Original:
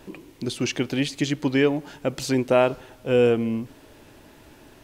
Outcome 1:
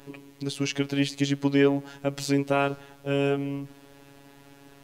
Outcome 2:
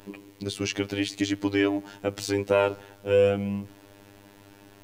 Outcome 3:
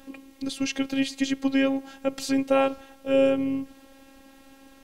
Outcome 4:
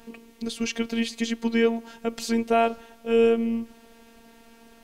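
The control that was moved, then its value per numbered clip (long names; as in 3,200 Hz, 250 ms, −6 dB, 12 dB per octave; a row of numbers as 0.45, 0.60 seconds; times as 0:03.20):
phases set to zero, frequency: 140, 100, 270, 230 Hertz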